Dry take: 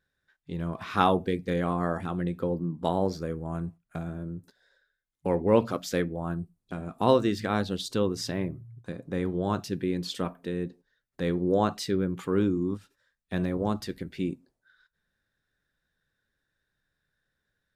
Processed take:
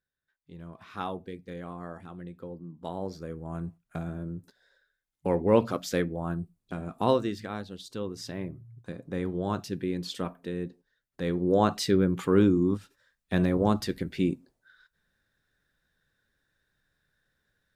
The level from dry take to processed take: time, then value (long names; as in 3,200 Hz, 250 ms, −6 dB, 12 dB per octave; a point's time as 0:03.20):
0:02.65 −12 dB
0:03.83 0 dB
0:06.94 0 dB
0:07.69 −11 dB
0:08.78 −2 dB
0:11.23 −2 dB
0:11.86 +4 dB